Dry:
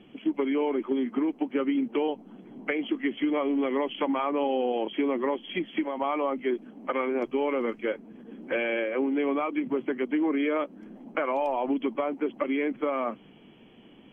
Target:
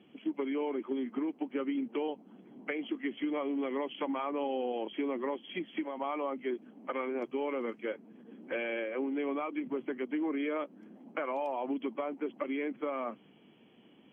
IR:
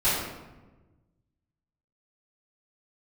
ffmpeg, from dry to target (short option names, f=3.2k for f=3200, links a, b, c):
-af "highpass=120,volume=-7dB"